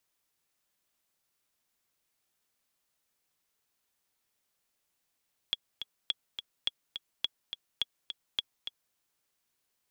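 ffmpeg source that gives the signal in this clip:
ffmpeg -f lavfi -i "aevalsrc='pow(10,(-15.5-8.5*gte(mod(t,2*60/210),60/210))/20)*sin(2*PI*3350*mod(t,60/210))*exp(-6.91*mod(t,60/210)/0.03)':duration=3.42:sample_rate=44100" out.wav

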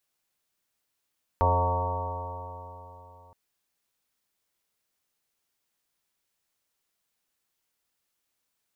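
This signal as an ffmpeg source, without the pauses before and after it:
ffmpeg -f lavfi -i "aevalsrc='0.0708*pow(10,-3*t/3.47)*sin(2*PI*87.35*t)+0.0075*pow(10,-3*t/3.47)*sin(2*PI*174.98*t)+0.0126*pow(10,-3*t/3.47)*sin(2*PI*263.19*t)+0.0075*pow(10,-3*t/3.47)*sin(2*PI*352.26*t)+0.0237*pow(10,-3*t/3.47)*sin(2*PI*442.46*t)+0.0398*pow(10,-3*t/3.47)*sin(2*PI*534.07*t)+0.0282*pow(10,-3*t/3.47)*sin(2*PI*627.35*t)+0.0282*pow(10,-3*t/3.47)*sin(2*PI*722.57*t)+0.0158*pow(10,-3*t/3.47)*sin(2*PI*819.96*t)+0.075*pow(10,-3*t/3.47)*sin(2*PI*919.76*t)+0.00794*pow(10,-3*t/3.47)*sin(2*PI*1022.21*t)+0.0316*pow(10,-3*t/3.47)*sin(2*PI*1127.52*t)':duration=1.92:sample_rate=44100" out.wav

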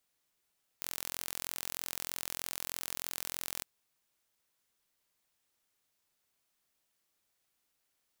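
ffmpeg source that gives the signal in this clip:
ffmpeg -f lavfi -i "aevalsrc='0.299*eq(mod(n,1021),0)':duration=2.81:sample_rate=44100" out.wav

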